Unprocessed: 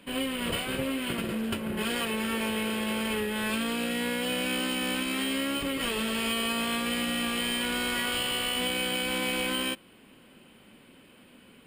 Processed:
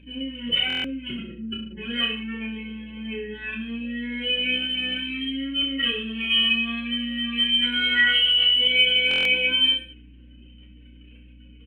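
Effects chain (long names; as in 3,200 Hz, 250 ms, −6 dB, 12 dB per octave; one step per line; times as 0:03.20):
expanding power law on the bin magnitudes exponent 2.7
flat-topped bell 2,600 Hz +15.5 dB
mains hum 60 Hz, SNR 25 dB
reverse bouncing-ball delay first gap 30 ms, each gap 1.1×, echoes 5
buffer that repeats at 0:00.68/0:09.09, samples 1,024, times 6
level −4.5 dB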